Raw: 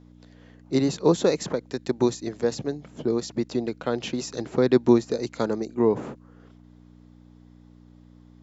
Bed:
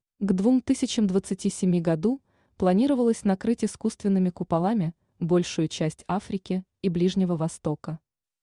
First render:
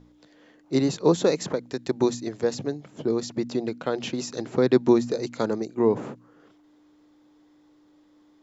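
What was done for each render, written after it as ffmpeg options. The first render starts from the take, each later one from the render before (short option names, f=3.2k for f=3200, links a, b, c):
-af "bandreject=f=60:t=h:w=4,bandreject=f=120:t=h:w=4,bandreject=f=180:t=h:w=4,bandreject=f=240:t=h:w=4"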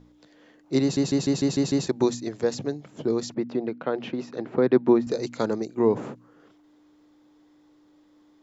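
-filter_complex "[0:a]asettb=1/sr,asplit=3[a][b][c];[a]atrim=end=3.344[d];[b]atrim=start=3.34:end=5.07,asetpts=PTS-STARTPTS,afade=t=in:d=0.004:c=qsin,afade=t=out:st=1.726:d=0.004:c=qsin,highpass=140,lowpass=2.3k[e];[c]atrim=start=5.066[f];[d][e]acrossfade=d=0.004:c1=hsin:c2=qsin[g];[g][f]acrossfade=d=0.004:c1=qsin:c2=hsin,asplit=8[h][i][j][k][l][m][n][o];[h]atrim=end=0.972[p];[i]atrim=start=0.818:end=0.972[q];[j]atrim=start=0.818:end=0.972[r];[k]atrim=start=0.818:end=0.972[s];[l]atrim=start=0.818:end=0.972[t];[m]atrim=start=0.818:end=0.972[u];[n]atrim=start=0.818:end=0.972[v];[o]atrim=start=1.868[w];[p][q]acrossfade=d=0.004:c1=hsin:c2=hsin[x];[x][r]acrossfade=d=0.004:c1=hsin:c2=hsin[y];[y][s]acrossfade=d=0.004:c1=hsin:c2=hsin[z];[z][t]acrossfade=d=0.004:c1=hsin:c2=hsin[aa];[aa][u]acrossfade=d=0.004:c1=hsin:c2=hsin[ab];[ab][v]acrossfade=d=0.004:c1=hsin:c2=hsin[ac];[ac][w]acrossfade=d=0.004:c1=hsin:c2=hsin"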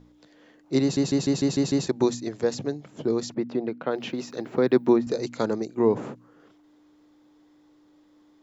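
-filter_complex "[0:a]asettb=1/sr,asplit=3[a][b][c];[a]atrim=end=3.914[d];[b]atrim=start=3.91:end=4.96,asetpts=PTS-STARTPTS,afade=t=in:d=0.004:c=qsin,afade=t=out:st=1.046:d=0.004:c=qsin,aemphasis=mode=production:type=75fm[e];[c]atrim=start=4.956[f];[d][e]acrossfade=d=0.004:c1=hsin:c2=qsin[g];[g][f]acrossfade=d=0.004:c1=qsin:c2=hsin"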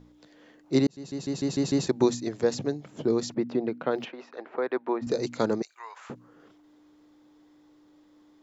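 -filter_complex "[0:a]asplit=3[a][b][c];[a]afade=t=out:st=4.04:d=0.02[d];[b]highpass=620,lowpass=2k,afade=t=in:st=4.04:d=0.02,afade=t=out:st=5.01:d=0.02[e];[c]afade=t=in:st=5.01:d=0.02[f];[d][e][f]amix=inputs=3:normalize=0,asettb=1/sr,asplit=3[g][h][i];[g]atrim=end=5.624[j];[h]atrim=start=5.62:end=6.1,asetpts=PTS-STARTPTS,afade=t=in:d=0.004:c=qsin,afade=t=out:st=0.476:d=0.004:c=qsin,highpass=f=1.2k:w=0.5412,highpass=f=1.2k:w=1.3066[k];[i]atrim=start=6.096[l];[j][k]acrossfade=d=0.004:c1=hsin:c2=qsin[m];[m][l]acrossfade=d=0.004:c1=qsin:c2=hsin,asplit=2[n][o];[n]atrim=end=0.87,asetpts=PTS-STARTPTS,afade=t=out:st=0.866:d=0.004:c=hsin[p];[o]atrim=start=0.87,asetpts=PTS-STARTPTS,afade=t=in:d=1.02[q];[p][q]concat=n=2:v=0:a=1"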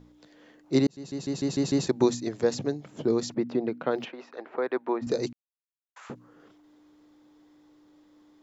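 -filter_complex "[0:a]asplit=3[a][b][c];[a]atrim=end=5.33,asetpts=PTS-STARTPTS,afade=t=out:st=5.326:d=0.004:c=hsin[d];[b]atrim=start=5.33:end=5.96,asetpts=PTS-STARTPTS,volume=0[e];[c]atrim=start=5.96,asetpts=PTS-STARTPTS,afade=t=in:d=0.004:c=hsin[f];[d][e][f]concat=n=3:v=0:a=1"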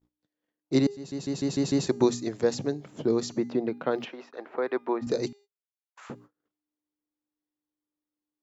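-af "bandreject=f=405.4:t=h:w=4,bandreject=f=810.8:t=h:w=4,bandreject=f=1.2162k:t=h:w=4,bandreject=f=1.6216k:t=h:w=4,bandreject=f=2.027k:t=h:w=4,bandreject=f=2.4324k:t=h:w=4,bandreject=f=2.8378k:t=h:w=4,bandreject=f=3.2432k:t=h:w=4,bandreject=f=3.6486k:t=h:w=4,bandreject=f=4.054k:t=h:w=4,bandreject=f=4.4594k:t=h:w=4,bandreject=f=4.8648k:t=h:w=4,bandreject=f=5.2702k:t=h:w=4,bandreject=f=5.6756k:t=h:w=4,bandreject=f=6.081k:t=h:w=4,bandreject=f=6.4864k:t=h:w=4,bandreject=f=6.8918k:t=h:w=4,bandreject=f=7.2972k:t=h:w=4,bandreject=f=7.7026k:t=h:w=4,bandreject=f=8.108k:t=h:w=4,bandreject=f=8.5134k:t=h:w=4,bandreject=f=8.9188k:t=h:w=4,bandreject=f=9.3242k:t=h:w=4,bandreject=f=9.7296k:t=h:w=4,bandreject=f=10.135k:t=h:w=4,bandreject=f=10.5404k:t=h:w=4,bandreject=f=10.9458k:t=h:w=4,bandreject=f=11.3512k:t=h:w=4,bandreject=f=11.7566k:t=h:w=4,agate=range=-33dB:threshold=-50dB:ratio=16:detection=peak"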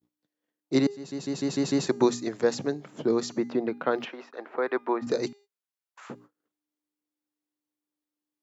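-af "highpass=140,adynamicequalizer=threshold=0.00708:dfrequency=1400:dqfactor=0.91:tfrequency=1400:tqfactor=0.91:attack=5:release=100:ratio=0.375:range=2.5:mode=boostabove:tftype=bell"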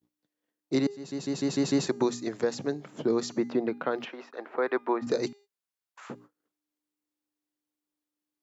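-af "alimiter=limit=-16dB:level=0:latency=1:release=359"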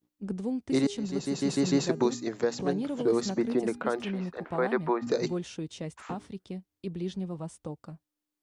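-filter_complex "[1:a]volume=-11dB[a];[0:a][a]amix=inputs=2:normalize=0"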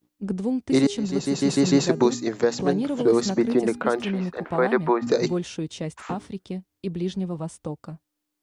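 -af "volume=6.5dB"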